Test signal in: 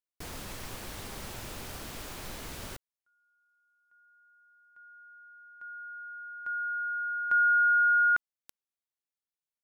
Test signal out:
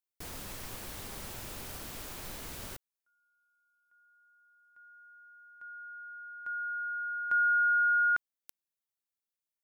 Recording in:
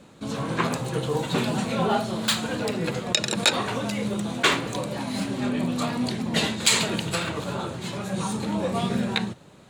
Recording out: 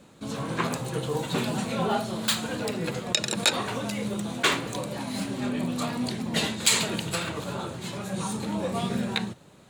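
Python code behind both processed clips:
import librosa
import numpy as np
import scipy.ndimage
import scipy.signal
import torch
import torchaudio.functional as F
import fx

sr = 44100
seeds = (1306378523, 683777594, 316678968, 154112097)

y = fx.high_shelf(x, sr, hz=9700.0, db=7.0)
y = y * librosa.db_to_amplitude(-3.0)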